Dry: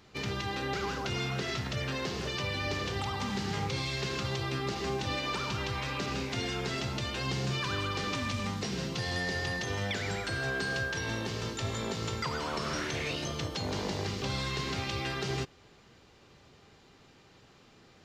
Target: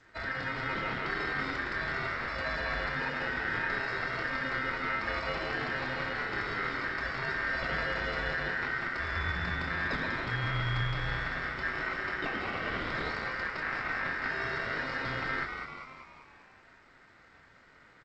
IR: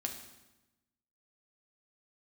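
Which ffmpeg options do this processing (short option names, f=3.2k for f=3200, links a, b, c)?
-filter_complex "[0:a]asplit=2[a][b];[b]acrusher=samples=28:mix=1:aa=0.000001,volume=-3.5dB[c];[a][c]amix=inputs=2:normalize=0,aresample=8000,aresample=44100,lowshelf=f=240:g=4,afreqshift=-19,highpass=f=63:p=1,asplit=2[d][e];[e]adelay=24,volume=-8.5dB[f];[d][f]amix=inputs=2:normalize=0,asplit=8[g][h][i][j][k][l][m][n];[h]adelay=195,afreqshift=92,volume=-6.5dB[o];[i]adelay=390,afreqshift=184,volume=-11.9dB[p];[j]adelay=585,afreqshift=276,volume=-17.2dB[q];[k]adelay=780,afreqshift=368,volume=-22.6dB[r];[l]adelay=975,afreqshift=460,volume=-27.9dB[s];[m]adelay=1170,afreqshift=552,volume=-33.3dB[t];[n]adelay=1365,afreqshift=644,volume=-38.6dB[u];[g][o][p][q][r][s][t][u]amix=inputs=8:normalize=0,aeval=exprs='val(0)*sin(2*PI*1700*n/s)':c=same,tiltshelf=f=820:g=7" -ar 16000 -c:a g722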